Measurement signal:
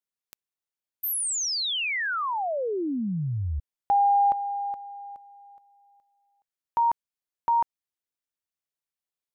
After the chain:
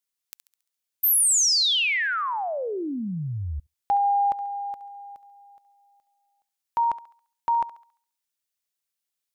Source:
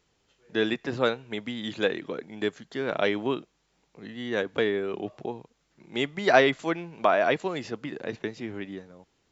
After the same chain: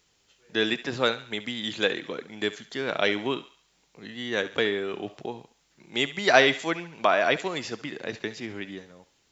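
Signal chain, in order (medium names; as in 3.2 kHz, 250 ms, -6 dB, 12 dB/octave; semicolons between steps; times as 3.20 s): treble shelf 2 kHz +10 dB; on a send: thinning echo 69 ms, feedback 46%, high-pass 640 Hz, level -13.5 dB; on the sum: trim -1.5 dB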